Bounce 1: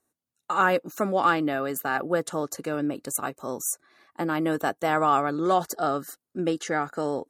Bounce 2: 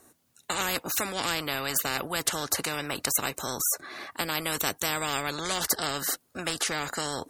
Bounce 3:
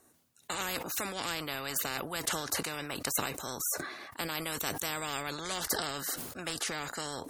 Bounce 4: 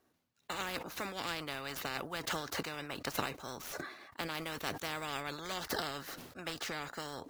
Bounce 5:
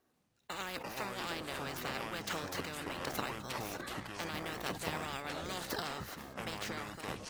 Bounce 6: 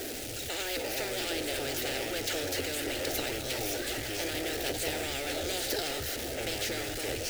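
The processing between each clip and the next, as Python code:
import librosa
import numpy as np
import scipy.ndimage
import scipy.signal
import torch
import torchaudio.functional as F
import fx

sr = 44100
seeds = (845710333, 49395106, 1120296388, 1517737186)

y1 = fx.spectral_comp(x, sr, ratio=4.0)
y1 = y1 * librosa.db_to_amplitude(1.5)
y2 = fx.sustainer(y1, sr, db_per_s=55.0)
y2 = y2 * librosa.db_to_amplitude(-6.5)
y3 = scipy.ndimage.median_filter(y2, 5, mode='constant')
y3 = fx.upward_expand(y3, sr, threshold_db=-46.0, expansion=1.5)
y4 = fx.fade_out_tail(y3, sr, length_s=0.6)
y4 = fx.echo_pitch(y4, sr, ms=94, semitones=-7, count=2, db_per_echo=-3.0)
y4 = y4 * librosa.db_to_amplitude(-2.5)
y5 = y4 + 0.5 * 10.0 ** (-33.0 / 20.0) * np.sign(y4)
y5 = fx.fixed_phaser(y5, sr, hz=440.0, stages=4)
y5 = y5 * librosa.db_to_amplitude(4.0)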